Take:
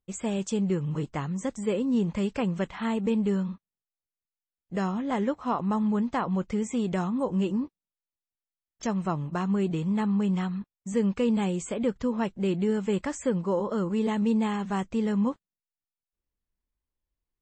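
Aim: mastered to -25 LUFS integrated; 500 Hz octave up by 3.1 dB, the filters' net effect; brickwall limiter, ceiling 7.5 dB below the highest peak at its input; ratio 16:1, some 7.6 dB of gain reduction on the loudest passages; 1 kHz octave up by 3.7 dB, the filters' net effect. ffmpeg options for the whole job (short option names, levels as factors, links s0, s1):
-af "equalizer=f=500:t=o:g=3,equalizer=f=1000:t=o:g=3.5,acompressor=threshold=0.0501:ratio=16,volume=2.37,alimiter=limit=0.158:level=0:latency=1"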